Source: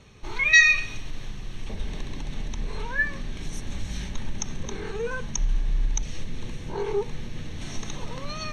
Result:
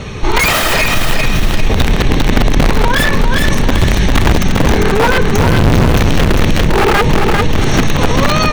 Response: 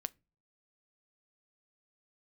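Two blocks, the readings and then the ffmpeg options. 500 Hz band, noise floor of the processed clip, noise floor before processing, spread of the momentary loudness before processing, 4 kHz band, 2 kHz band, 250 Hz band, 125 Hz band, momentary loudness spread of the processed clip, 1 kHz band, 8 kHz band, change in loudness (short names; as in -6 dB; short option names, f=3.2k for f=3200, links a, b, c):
+19.5 dB, -13 dBFS, -36 dBFS, 19 LU, +16.5 dB, +8.5 dB, +24.5 dB, +22.5 dB, 3 LU, +25.0 dB, +12.0 dB, +13.5 dB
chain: -filter_complex "[0:a]lowshelf=f=84:g=-2,asplit=2[a][b];[b]volume=24dB,asoftclip=hard,volume=-24dB,volume=-6dB[c];[a][c]amix=inputs=2:normalize=0,flanger=delay=1.5:depth=4:regen=-80:speed=0.51:shape=triangular,aeval=exprs='(mod(16.8*val(0)+1,2)-1)/16.8':c=same,highshelf=f=3.6k:g=-7,acrossover=split=3600[d][e];[e]acompressor=threshold=-42dB:ratio=4:attack=1:release=60[f];[d][f]amix=inputs=2:normalize=0,asplit=2[g][h];[h]aecho=0:1:399|798|1197|1596:0.562|0.202|0.0729|0.0262[i];[g][i]amix=inputs=2:normalize=0,alimiter=level_in=31dB:limit=-1dB:release=50:level=0:latency=1,volume=-2dB"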